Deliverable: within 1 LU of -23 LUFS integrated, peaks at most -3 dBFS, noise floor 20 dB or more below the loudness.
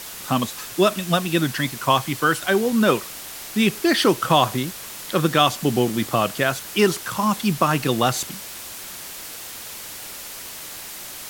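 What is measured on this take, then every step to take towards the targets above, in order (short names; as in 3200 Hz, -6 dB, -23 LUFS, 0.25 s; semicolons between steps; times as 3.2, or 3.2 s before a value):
noise floor -36 dBFS; noise floor target -41 dBFS; loudness -21.0 LUFS; peak -2.5 dBFS; loudness target -23.0 LUFS
-> denoiser 6 dB, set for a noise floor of -36 dBFS; gain -2 dB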